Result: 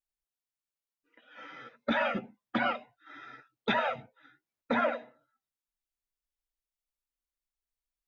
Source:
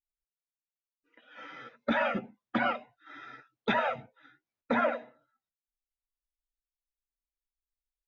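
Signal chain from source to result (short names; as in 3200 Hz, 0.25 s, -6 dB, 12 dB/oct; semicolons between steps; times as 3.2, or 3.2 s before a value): dynamic EQ 4000 Hz, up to +4 dB, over -49 dBFS, Q 1.2; gain -1 dB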